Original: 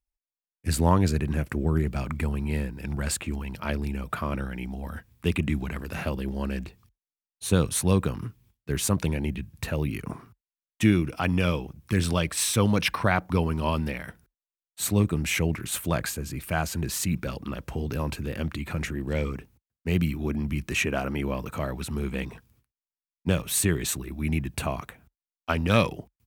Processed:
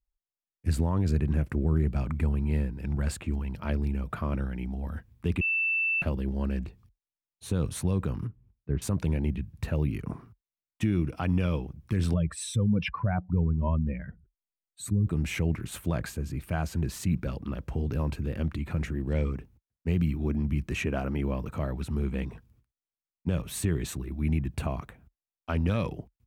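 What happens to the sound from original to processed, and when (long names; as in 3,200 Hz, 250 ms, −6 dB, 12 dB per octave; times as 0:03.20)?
0:05.41–0:06.02: beep over 2,660 Hz −16 dBFS
0:08.27–0:08.82: head-to-tape spacing loss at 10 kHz 42 dB
0:12.14–0:15.07: expanding power law on the bin magnitudes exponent 2
whole clip: spectral tilt −2 dB per octave; brickwall limiter −12 dBFS; level −5 dB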